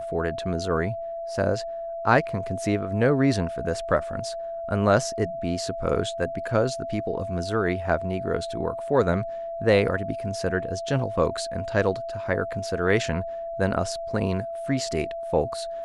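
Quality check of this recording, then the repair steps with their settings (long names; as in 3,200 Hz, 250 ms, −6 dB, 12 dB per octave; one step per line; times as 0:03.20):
whistle 670 Hz −30 dBFS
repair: notch filter 670 Hz, Q 30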